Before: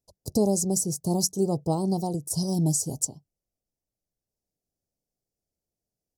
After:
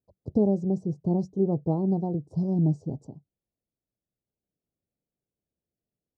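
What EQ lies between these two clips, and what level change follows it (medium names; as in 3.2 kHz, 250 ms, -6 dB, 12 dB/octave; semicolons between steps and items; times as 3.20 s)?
high-pass 130 Hz 6 dB/octave; tape spacing loss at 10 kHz 42 dB; tilt shelf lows +7 dB, about 880 Hz; -2.5 dB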